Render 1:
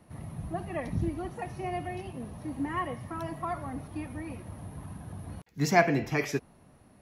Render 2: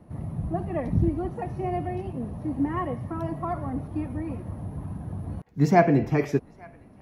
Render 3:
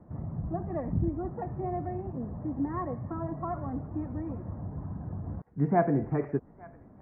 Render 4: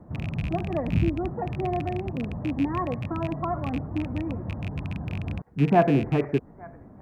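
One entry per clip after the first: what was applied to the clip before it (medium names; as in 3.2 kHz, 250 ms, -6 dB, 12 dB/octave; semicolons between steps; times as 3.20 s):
tilt shelf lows +8 dB, about 1.3 kHz; band-passed feedback delay 857 ms, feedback 53%, band-pass 1.8 kHz, level -23.5 dB
inverse Chebyshev low-pass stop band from 3.3 kHz, stop band 40 dB; in parallel at -1.5 dB: compression, threshold -31 dBFS, peak gain reduction 17.5 dB; on the sum: trim -7.5 dB
rattle on loud lows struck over -32 dBFS, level -32 dBFS; trim +5.5 dB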